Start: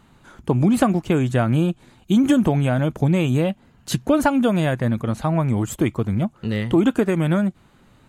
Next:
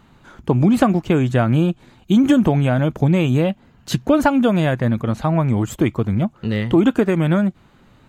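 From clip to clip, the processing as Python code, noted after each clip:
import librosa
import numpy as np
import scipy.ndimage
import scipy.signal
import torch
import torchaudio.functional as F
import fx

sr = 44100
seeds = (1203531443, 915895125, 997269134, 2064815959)

y = fx.peak_eq(x, sr, hz=9800.0, db=-8.5, octaves=0.8)
y = F.gain(torch.from_numpy(y), 2.5).numpy()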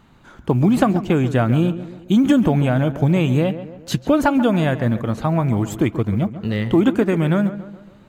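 y = fx.quant_float(x, sr, bits=6)
y = fx.echo_tape(y, sr, ms=138, feedback_pct=53, wet_db=-11, lp_hz=1900.0, drive_db=2.0, wow_cents=17)
y = F.gain(torch.from_numpy(y), -1.0).numpy()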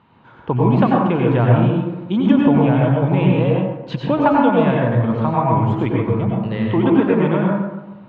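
y = fx.cabinet(x, sr, low_hz=100.0, low_slope=12, high_hz=3700.0, hz=(120.0, 500.0, 970.0, 2600.0), db=(6, 4, 10, 3))
y = fx.rev_plate(y, sr, seeds[0], rt60_s=0.81, hf_ratio=0.45, predelay_ms=80, drr_db=-2.0)
y = F.gain(torch.from_numpy(y), -4.5).numpy()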